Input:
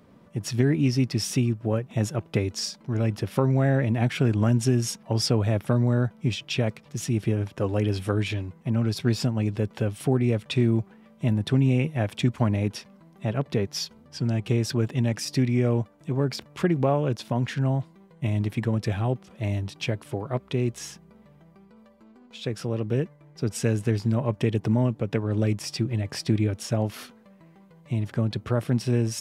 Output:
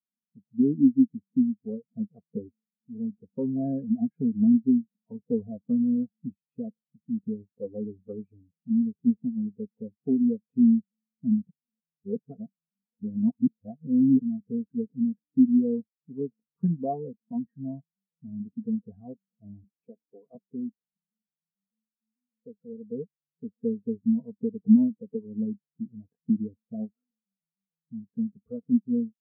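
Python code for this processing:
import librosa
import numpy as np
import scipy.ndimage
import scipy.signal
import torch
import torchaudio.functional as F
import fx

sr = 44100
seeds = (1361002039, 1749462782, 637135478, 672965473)

y = fx.highpass(x, sr, hz=190.0, slope=12, at=(19.64, 20.35))
y = fx.edit(y, sr, fx.reverse_span(start_s=11.49, length_s=2.73), tone=tone)
y = scipy.signal.sosfilt(scipy.signal.butter(2, 1000.0, 'lowpass', fs=sr, output='sos'), y)
y = y + 0.7 * np.pad(y, (int(4.3 * sr / 1000.0), 0))[:len(y)]
y = fx.spectral_expand(y, sr, expansion=2.5)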